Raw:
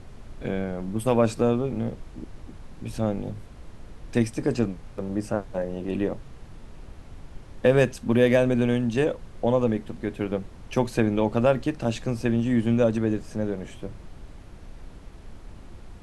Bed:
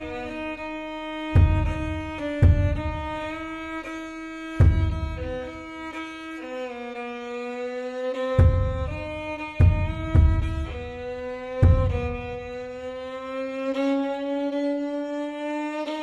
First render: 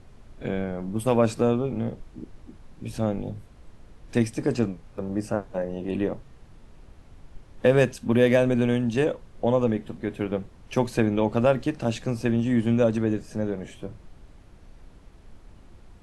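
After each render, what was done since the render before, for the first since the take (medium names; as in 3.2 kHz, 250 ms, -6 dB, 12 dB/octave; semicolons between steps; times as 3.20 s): noise print and reduce 6 dB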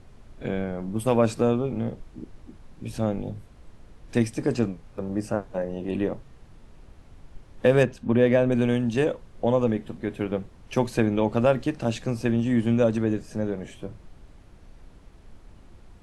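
7.83–8.52 s: low-pass 1.9 kHz 6 dB/octave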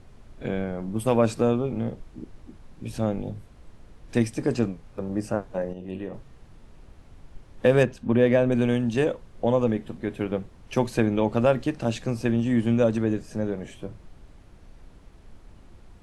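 5.73–6.14 s: feedback comb 93 Hz, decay 0.62 s, mix 70%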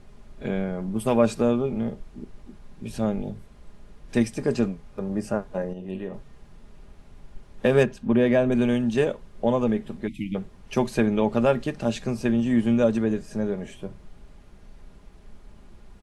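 10.07–10.35 s: spectral selection erased 330–1900 Hz; comb 4.9 ms, depth 40%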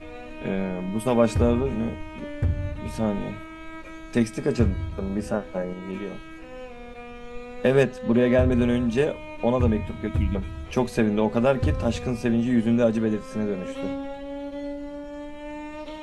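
add bed -7.5 dB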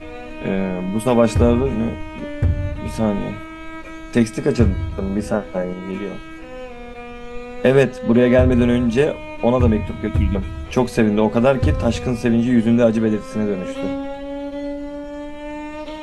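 trim +6 dB; peak limiter -2 dBFS, peak gain reduction 2 dB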